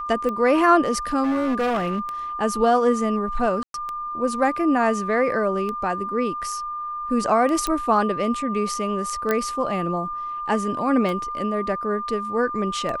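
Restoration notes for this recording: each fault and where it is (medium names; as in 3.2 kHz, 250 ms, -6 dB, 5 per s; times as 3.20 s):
tick 33 1/3 rpm -17 dBFS
whine 1.2 kHz -27 dBFS
1.23–2.00 s: clipped -19 dBFS
3.63–3.74 s: dropout 112 ms
7.67 s: pop -10 dBFS
9.31 s: pop -9 dBFS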